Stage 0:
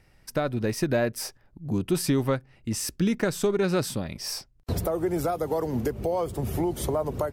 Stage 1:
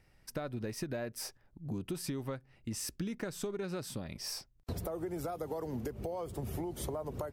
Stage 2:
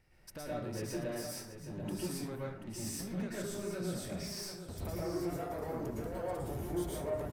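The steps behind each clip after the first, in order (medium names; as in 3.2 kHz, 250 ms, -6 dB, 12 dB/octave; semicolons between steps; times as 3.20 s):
compression, threshold -28 dBFS, peak gain reduction 9 dB; trim -6.5 dB
saturation -36.5 dBFS, distortion -12 dB; delay 734 ms -10.5 dB; reverberation RT60 0.65 s, pre-delay 103 ms, DRR -6 dB; trim -4 dB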